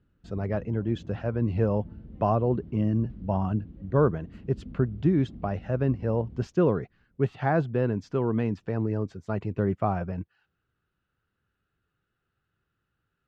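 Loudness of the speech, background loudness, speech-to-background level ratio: -28.0 LUFS, -46.0 LUFS, 18.0 dB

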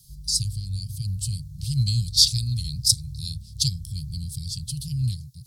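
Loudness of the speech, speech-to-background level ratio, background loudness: -25.0 LUFS, 14.0 dB, -39.0 LUFS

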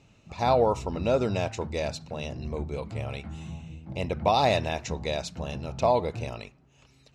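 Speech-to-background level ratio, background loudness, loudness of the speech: 11.5 dB, -40.0 LUFS, -28.5 LUFS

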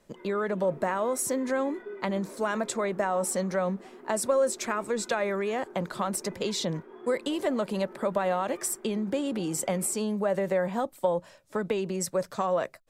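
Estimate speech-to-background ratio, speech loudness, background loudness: 17.5 dB, -29.5 LUFS, -47.0 LUFS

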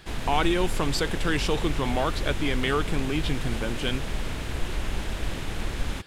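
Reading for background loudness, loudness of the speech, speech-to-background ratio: -33.0 LUFS, -28.0 LUFS, 5.0 dB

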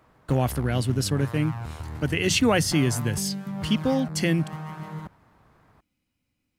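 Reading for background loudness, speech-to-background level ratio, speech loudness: -35.5 LUFS, 10.5 dB, -25.0 LUFS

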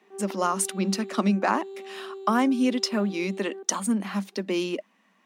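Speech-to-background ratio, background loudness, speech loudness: 13.5 dB, -40.0 LUFS, -26.5 LUFS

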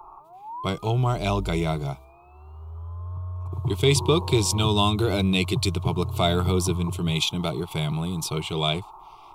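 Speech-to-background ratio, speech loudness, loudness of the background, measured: 8.5 dB, -24.5 LUFS, -33.0 LUFS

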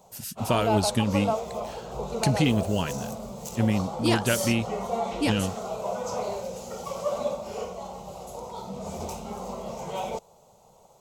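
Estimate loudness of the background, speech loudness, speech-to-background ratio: -33.0 LUFS, -26.5 LUFS, 6.5 dB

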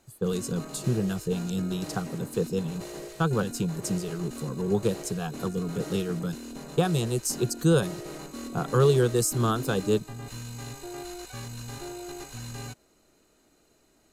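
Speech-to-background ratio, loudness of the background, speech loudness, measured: 12.0 dB, -40.0 LUFS, -28.0 LUFS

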